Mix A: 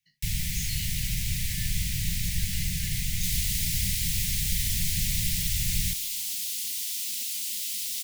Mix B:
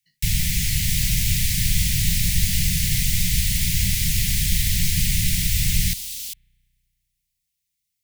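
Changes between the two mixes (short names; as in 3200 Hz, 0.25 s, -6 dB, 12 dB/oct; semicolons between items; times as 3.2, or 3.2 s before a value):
first sound +8.0 dB; second sound: entry -2.35 s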